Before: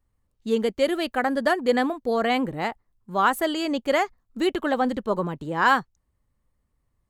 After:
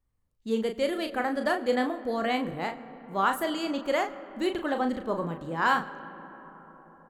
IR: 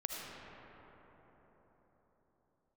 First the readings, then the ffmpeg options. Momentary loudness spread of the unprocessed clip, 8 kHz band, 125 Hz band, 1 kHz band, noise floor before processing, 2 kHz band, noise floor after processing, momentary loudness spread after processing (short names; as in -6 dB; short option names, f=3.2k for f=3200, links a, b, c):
7 LU, -5.0 dB, -4.0 dB, -4.5 dB, -74 dBFS, -5.0 dB, -72 dBFS, 16 LU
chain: -filter_complex "[0:a]asplit=2[a][b];[b]adelay=36,volume=-7dB[c];[a][c]amix=inputs=2:normalize=0,asplit=2[d][e];[1:a]atrim=start_sample=2205[f];[e][f]afir=irnorm=-1:irlink=0,volume=-13dB[g];[d][g]amix=inputs=2:normalize=0,volume=-7dB"